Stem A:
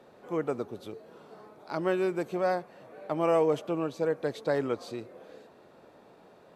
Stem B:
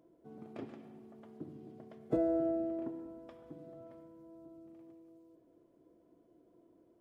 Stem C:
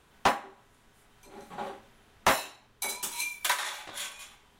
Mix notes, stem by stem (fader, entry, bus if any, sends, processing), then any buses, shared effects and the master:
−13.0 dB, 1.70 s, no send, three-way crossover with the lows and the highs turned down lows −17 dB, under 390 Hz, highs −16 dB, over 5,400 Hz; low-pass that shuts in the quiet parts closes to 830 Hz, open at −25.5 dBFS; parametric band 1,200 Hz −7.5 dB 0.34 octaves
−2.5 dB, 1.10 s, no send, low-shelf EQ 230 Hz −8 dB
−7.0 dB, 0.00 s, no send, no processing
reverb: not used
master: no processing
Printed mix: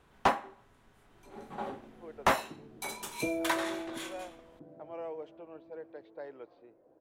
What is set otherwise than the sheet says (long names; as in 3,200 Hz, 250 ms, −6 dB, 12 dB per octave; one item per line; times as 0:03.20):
stem B: missing low-shelf EQ 230 Hz −8 dB
stem C −7.0 dB → 0.0 dB
master: extra high-shelf EQ 2,500 Hz −9.5 dB